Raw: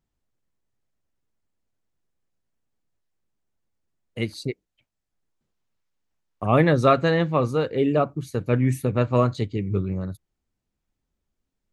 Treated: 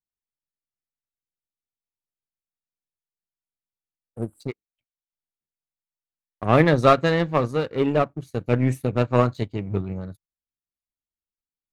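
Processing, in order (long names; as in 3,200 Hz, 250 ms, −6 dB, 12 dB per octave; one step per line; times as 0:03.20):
time-frequency box erased 0:04.09–0:04.41, 1,600–7,200 Hz
power curve on the samples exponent 1.4
level +4 dB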